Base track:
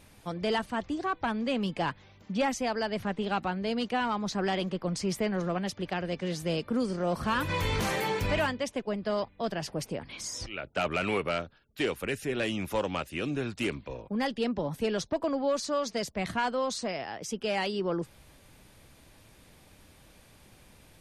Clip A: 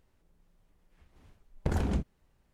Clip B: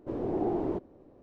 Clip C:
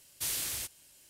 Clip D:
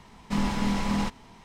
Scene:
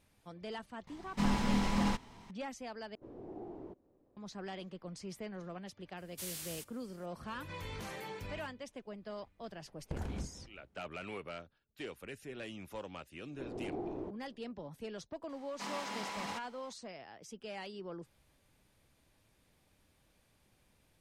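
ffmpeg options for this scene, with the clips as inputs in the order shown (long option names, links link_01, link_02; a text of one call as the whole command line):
ffmpeg -i bed.wav -i cue0.wav -i cue1.wav -i cue2.wav -i cue3.wav -filter_complex "[4:a]asplit=2[link_01][link_02];[2:a]asplit=2[link_03][link_04];[0:a]volume=-14.5dB[link_05];[link_03]acompressor=mode=upward:threshold=-46dB:ratio=2.5:attack=3.2:release=140:knee=2.83:detection=peak[link_06];[3:a]dynaudnorm=framelen=120:gausssize=3:maxgain=3.5dB[link_07];[1:a]aecho=1:1:188|376|564:0.158|0.0555|0.0194[link_08];[link_02]highpass=490[link_09];[link_05]asplit=2[link_10][link_11];[link_10]atrim=end=2.954[link_12];[link_06]atrim=end=1.22,asetpts=PTS-STARTPTS,volume=-17dB[link_13];[link_11]atrim=start=4.166[link_14];[link_01]atrim=end=1.44,asetpts=PTS-STARTPTS,volume=-4.5dB,afade=type=in:duration=0.004:curve=hsin,afade=type=out:start_time=1.436:duration=0.004:curve=hsin,adelay=870[link_15];[link_07]atrim=end=1.09,asetpts=PTS-STARTPTS,volume=-13dB,afade=type=in:duration=0.004:curve=hsin,afade=type=out:start_time=1.086:duration=0.004:curve=hsin,adelay=5970[link_16];[link_08]atrim=end=2.53,asetpts=PTS-STARTPTS,volume=-10.5dB,afade=type=in:duration=0.004:curve=hsin,afade=type=out:start_time=2.526:duration=0.004:curve=hsin,adelay=8250[link_17];[link_04]atrim=end=1.22,asetpts=PTS-STARTPTS,volume=-10.5dB,afade=type=in:duration=0.004:curve=hsin,afade=type=out:start_time=1.216:duration=0.004:curve=hsin,adelay=587412S[link_18];[link_09]atrim=end=1.44,asetpts=PTS-STARTPTS,volume=-7.5dB,afade=type=in:duration=0.004:curve=hsin,afade=type=out:start_time=1.436:duration=0.004:curve=hsin,adelay=15290[link_19];[link_12][link_13]acrossfade=duration=0.004:curve1=hsin:curve2=hsin[link_20];[link_20][link_14]acrossfade=duration=0.004:curve1=hsin:curve2=hsin[link_21];[link_21][link_15][link_16][link_17][link_18][link_19]amix=inputs=6:normalize=0" out.wav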